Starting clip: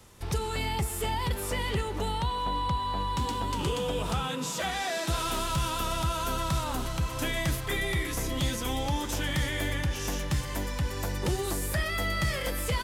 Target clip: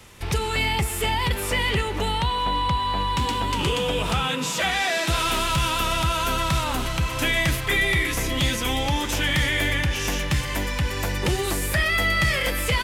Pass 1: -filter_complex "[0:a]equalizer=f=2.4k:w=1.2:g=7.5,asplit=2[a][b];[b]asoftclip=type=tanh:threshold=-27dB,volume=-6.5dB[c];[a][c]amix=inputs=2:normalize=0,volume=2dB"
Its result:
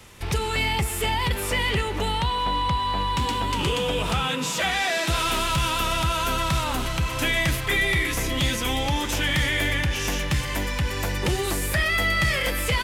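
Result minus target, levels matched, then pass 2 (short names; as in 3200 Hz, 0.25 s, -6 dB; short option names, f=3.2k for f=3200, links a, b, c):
soft clip: distortion +11 dB
-filter_complex "[0:a]equalizer=f=2.4k:w=1.2:g=7.5,asplit=2[a][b];[b]asoftclip=type=tanh:threshold=-18.5dB,volume=-6.5dB[c];[a][c]amix=inputs=2:normalize=0,volume=2dB"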